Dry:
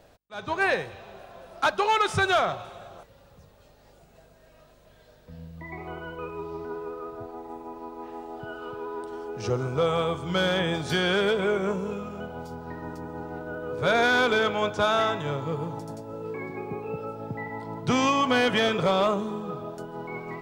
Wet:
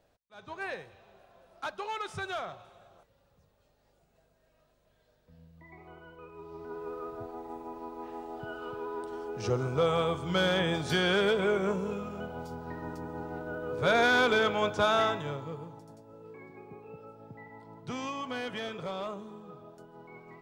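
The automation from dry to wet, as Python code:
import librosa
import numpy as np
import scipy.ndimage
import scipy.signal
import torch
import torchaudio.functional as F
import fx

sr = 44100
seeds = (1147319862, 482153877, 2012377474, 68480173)

y = fx.gain(x, sr, db=fx.line((6.28, -13.5), (6.94, -2.5), (15.05, -2.5), (15.78, -14.0)))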